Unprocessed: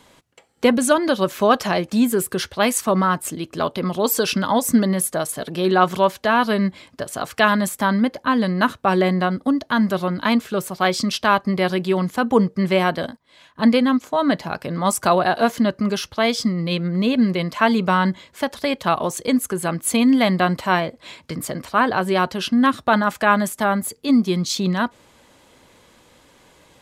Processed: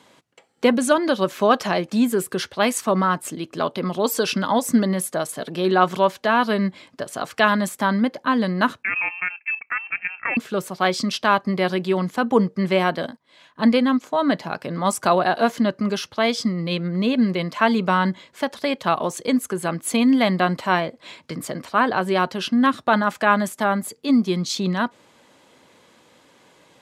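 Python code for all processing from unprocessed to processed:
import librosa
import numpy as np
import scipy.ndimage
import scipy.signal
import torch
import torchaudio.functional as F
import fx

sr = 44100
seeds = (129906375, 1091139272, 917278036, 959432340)

y = fx.chain(x, sr, fx.highpass(hz=330.0, slope=12),
    fx.level_steps(step_db=11),
    fx.freq_invert(carrier_hz=2900), at=(8.83, 10.37))
y = scipy.signal.sosfilt(scipy.signal.butter(2, 140.0, 'highpass', fs=sr, output='sos'), y)
y = fx.high_shelf(y, sr, hz=11000.0, db=-9.5)
y = y * 10.0 ** (-1.0 / 20.0)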